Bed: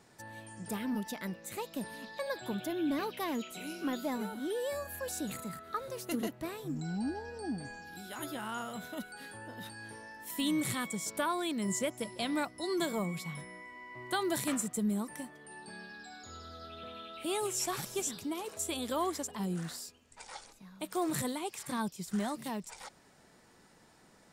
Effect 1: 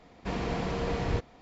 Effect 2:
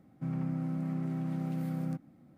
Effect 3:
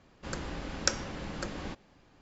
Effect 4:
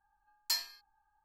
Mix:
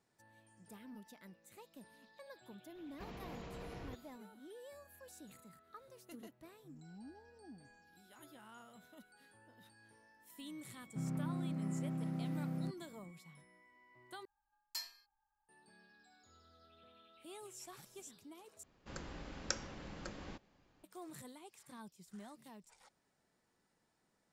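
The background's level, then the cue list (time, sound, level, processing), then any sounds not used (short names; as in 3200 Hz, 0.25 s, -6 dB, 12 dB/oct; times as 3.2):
bed -18 dB
2.75 add 1 -11.5 dB + limiter -29 dBFS
10.74 add 2 -5.5 dB
14.25 replace with 4 -11 dB
18.63 replace with 3 -10 dB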